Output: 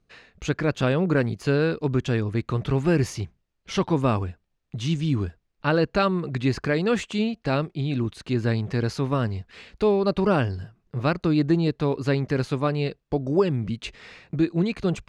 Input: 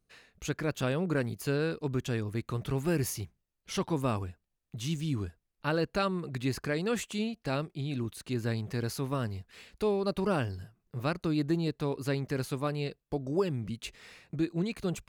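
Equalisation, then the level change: air absorption 100 m; +8.5 dB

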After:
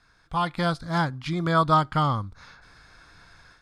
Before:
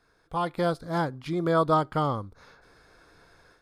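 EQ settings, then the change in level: LPF 8000 Hz 12 dB/oct; bell 440 Hz -14 dB 1.4 oct; +7.5 dB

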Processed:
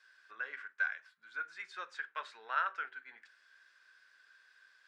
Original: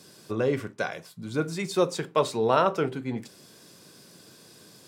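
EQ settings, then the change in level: ladder band-pass 1700 Hz, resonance 75%; +1.0 dB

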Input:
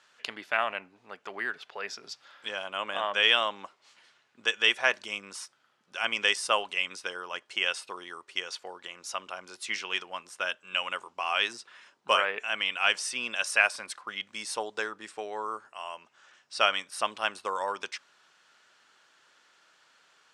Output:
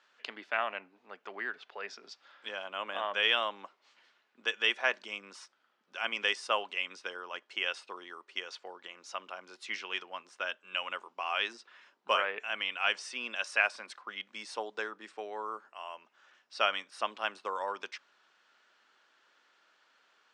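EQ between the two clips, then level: HPF 200 Hz 24 dB/oct; air absorption 100 m; -3.5 dB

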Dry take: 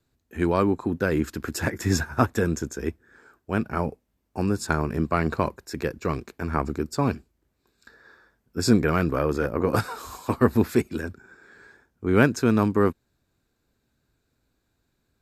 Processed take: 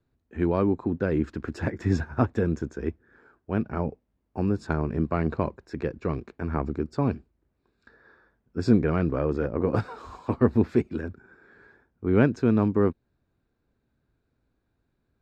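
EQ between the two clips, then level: dynamic EQ 1300 Hz, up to -4 dB, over -36 dBFS, Q 1.1; tape spacing loss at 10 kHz 27 dB; 0.0 dB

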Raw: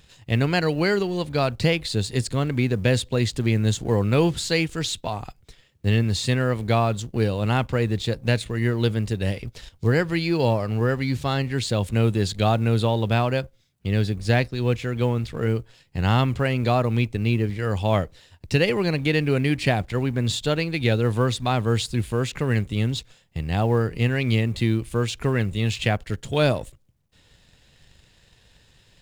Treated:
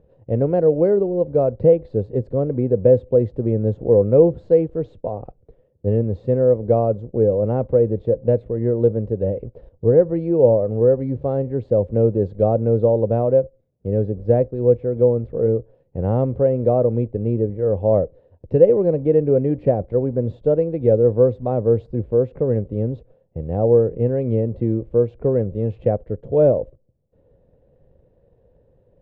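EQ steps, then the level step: synth low-pass 520 Hz, resonance Q 4.9; -1.0 dB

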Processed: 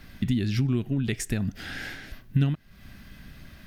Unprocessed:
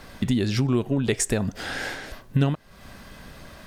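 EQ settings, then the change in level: ten-band EQ 500 Hz -12 dB, 1000 Hz -11 dB, 4000 Hz -3 dB, 8000 Hz -10 dB; 0.0 dB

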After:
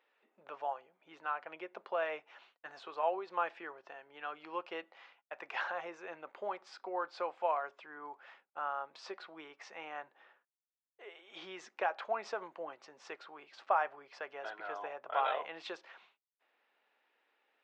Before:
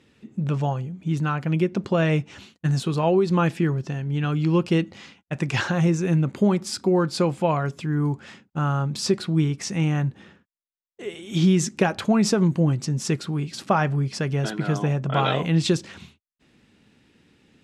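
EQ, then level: HPF 650 Hz 24 dB/oct; tape spacing loss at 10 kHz 42 dB; -3.0 dB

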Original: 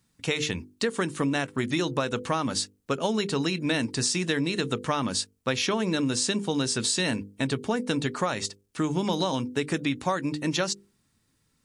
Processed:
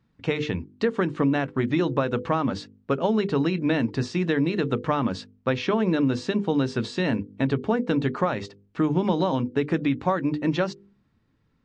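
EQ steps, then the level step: air absorption 59 m; tape spacing loss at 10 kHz 29 dB; notches 50/100/150/200/250 Hz; +5.5 dB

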